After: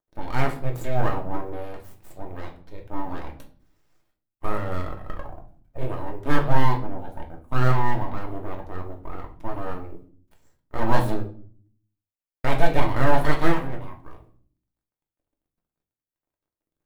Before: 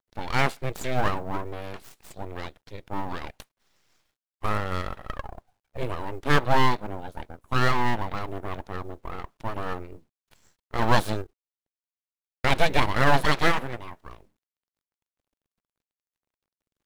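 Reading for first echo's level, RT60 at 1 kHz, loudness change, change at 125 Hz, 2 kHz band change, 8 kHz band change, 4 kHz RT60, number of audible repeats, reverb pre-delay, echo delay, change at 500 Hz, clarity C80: no echo audible, 0.45 s, −0.5 dB, +3.0 dB, −4.0 dB, −6.0 dB, 0.35 s, no echo audible, 3 ms, no echo audible, +1.0 dB, 16.0 dB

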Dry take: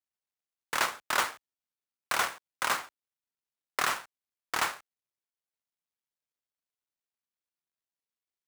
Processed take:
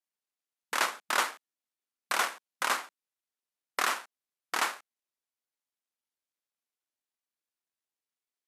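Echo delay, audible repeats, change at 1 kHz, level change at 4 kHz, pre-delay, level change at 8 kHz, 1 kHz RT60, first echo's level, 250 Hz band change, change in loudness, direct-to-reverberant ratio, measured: no echo audible, no echo audible, 0.0 dB, 0.0 dB, no reverb audible, 0.0 dB, no reverb audible, no echo audible, −0.5 dB, 0.0 dB, no reverb audible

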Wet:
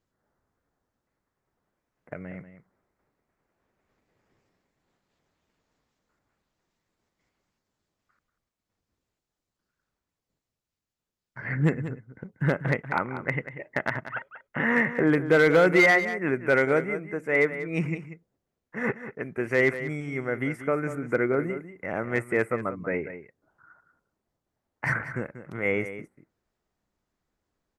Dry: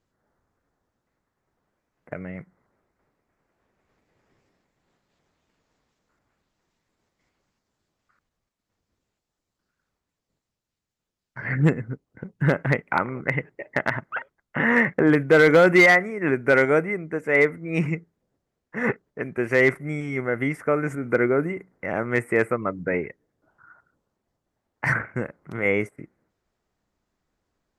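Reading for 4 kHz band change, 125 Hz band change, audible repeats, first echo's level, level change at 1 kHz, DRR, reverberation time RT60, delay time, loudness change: −4.0 dB, −3.5 dB, 1, −12.0 dB, −3.5 dB, no reverb audible, no reverb audible, 189 ms, −4.0 dB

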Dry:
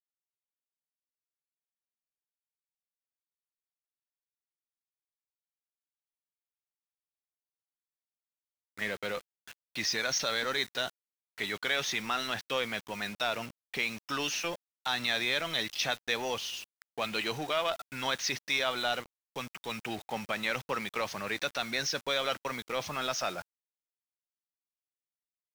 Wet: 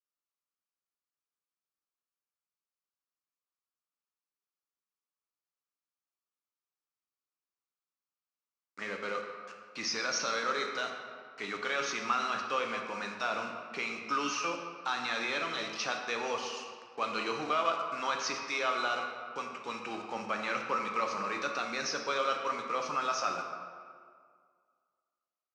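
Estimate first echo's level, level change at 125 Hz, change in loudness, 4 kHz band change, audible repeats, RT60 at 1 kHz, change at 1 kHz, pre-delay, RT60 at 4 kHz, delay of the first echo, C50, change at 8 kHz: no echo audible, −8.0 dB, −1.0 dB, −6.0 dB, no echo audible, 2.0 s, +4.0 dB, 8 ms, 1.2 s, no echo audible, 4.5 dB, −3.0 dB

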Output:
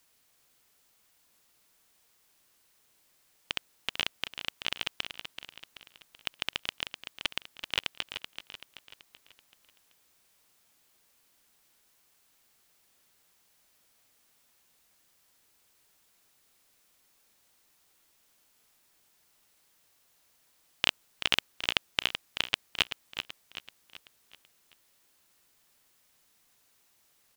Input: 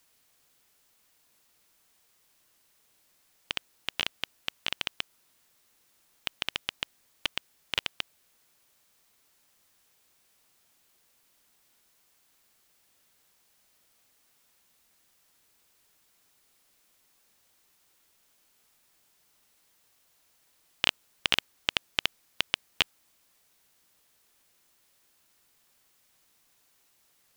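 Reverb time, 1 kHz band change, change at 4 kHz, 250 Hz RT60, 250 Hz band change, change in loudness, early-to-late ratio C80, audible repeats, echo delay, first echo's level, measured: no reverb audible, 0.0 dB, −0.5 dB, no reverb audible, 0.0 dB, −1.0 dB, no reverb audible, 4, 382 ms, −9.0 dB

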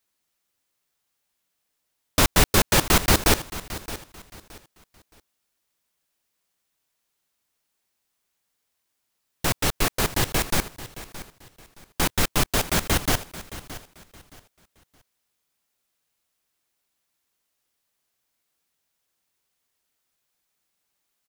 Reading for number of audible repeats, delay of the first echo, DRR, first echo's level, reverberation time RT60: 2, 620 ms, no reverb audible, −15.5 dB, no reverb audible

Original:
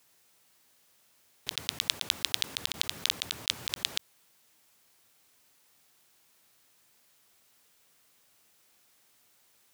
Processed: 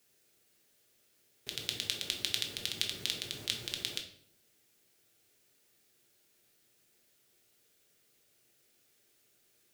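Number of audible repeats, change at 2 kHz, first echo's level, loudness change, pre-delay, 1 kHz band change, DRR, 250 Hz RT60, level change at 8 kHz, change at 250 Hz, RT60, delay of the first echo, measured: no echo audible, −4.5 dB, no echo audible, −4.5 dB, 5 ms, −9.0 dB, 2.5 dB, 0.85 s, −4.5 dB, −0.5 dB, 0.70 s, no echo audible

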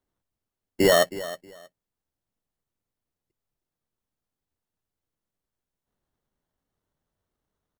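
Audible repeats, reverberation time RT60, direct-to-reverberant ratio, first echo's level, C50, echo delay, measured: 2, no reverb audible, no reverb audible, −15.5 dB, no reverb audible, 317 ms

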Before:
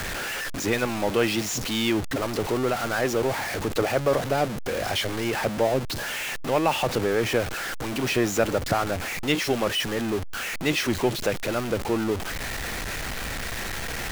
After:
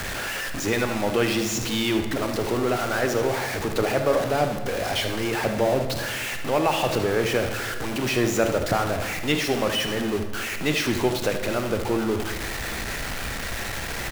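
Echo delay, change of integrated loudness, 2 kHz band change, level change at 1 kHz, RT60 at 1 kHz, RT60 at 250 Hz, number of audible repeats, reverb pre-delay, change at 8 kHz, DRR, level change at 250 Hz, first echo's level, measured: 76 ms, +1.0 dB, +1.0 dB, +1.0 dB, 1.4 s, 1.9 s, 1, 25 ms, +1.0 dB, 5.5 dB, +1.0 dB, −11.0 dB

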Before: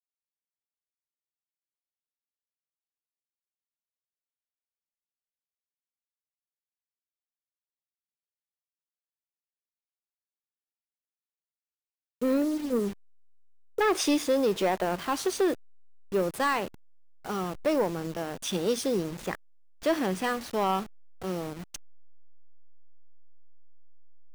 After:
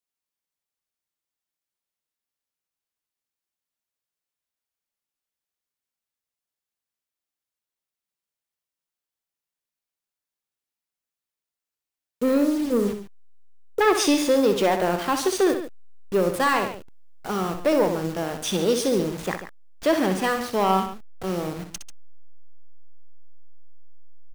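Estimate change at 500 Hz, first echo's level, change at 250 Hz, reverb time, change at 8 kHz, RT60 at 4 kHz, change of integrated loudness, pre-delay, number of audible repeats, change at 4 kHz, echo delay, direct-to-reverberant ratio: +6.0 dB, −8.5 dB, +5.5 dB, no reverb audible, +6.0 dB, no reverb audible, +5.5 dB, no reverb audible, 2, +6.0 dB, 63 ms, no reverb audible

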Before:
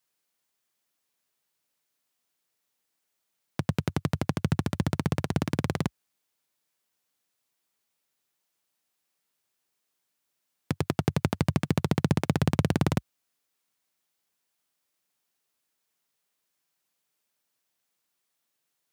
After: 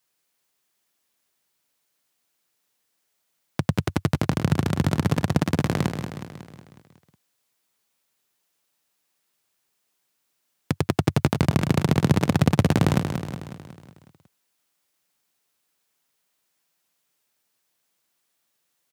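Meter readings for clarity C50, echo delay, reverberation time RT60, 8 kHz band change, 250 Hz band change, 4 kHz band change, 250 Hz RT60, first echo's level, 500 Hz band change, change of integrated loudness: no reverb audible, 183 ms, no reverb audible, +5.5 dB, +5.5 dB, +5.5 dB, no reverb audible, −7.5 dB, +5.5 dB, +5.5 dB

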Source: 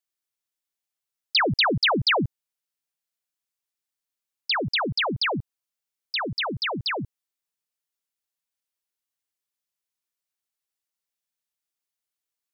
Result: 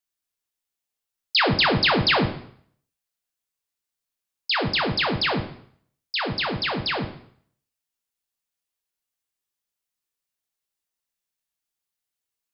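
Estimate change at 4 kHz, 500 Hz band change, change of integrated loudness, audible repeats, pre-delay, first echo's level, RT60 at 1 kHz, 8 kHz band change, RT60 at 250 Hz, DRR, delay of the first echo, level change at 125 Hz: +1.5 dB, +2.0 dB, +2.0 dB, no echo audible, 5 ms, no echo audible, 0.60 s, can't be measured, 0.55 s, 3.5 dB, no echo audible, +3.0 dB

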